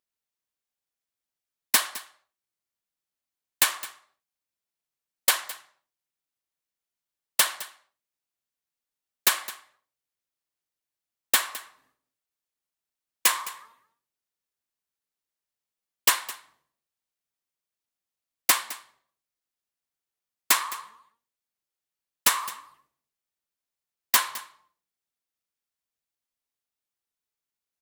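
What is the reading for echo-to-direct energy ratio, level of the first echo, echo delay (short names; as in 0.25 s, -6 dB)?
-17.0 dB, -17.0 dB, 0.212 s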